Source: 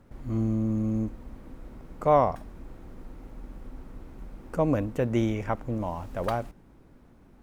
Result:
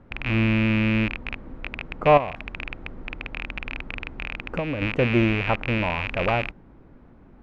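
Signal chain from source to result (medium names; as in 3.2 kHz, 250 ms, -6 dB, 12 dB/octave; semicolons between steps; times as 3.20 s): rattle on loud lows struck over -40 dBFS, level -17 dBFS; low-pass 2.5 kHz 12 dB/octave; 2.17–4.82 s: compression 10:1, threshold -29 dBFS, peak gain reduction 12 dB; trim +5 dB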